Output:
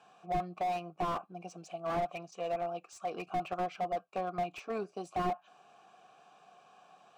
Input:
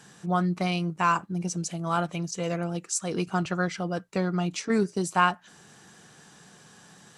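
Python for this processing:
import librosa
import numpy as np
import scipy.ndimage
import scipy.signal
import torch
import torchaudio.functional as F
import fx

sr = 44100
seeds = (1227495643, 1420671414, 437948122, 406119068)

y = fx.vowel_filter(x, sr, vowel='a')
y = fx.slew_limit(y, sr, full_power_hz=11.0)
y = F.gain(torch.from_numpy(y), 6.5).numpy()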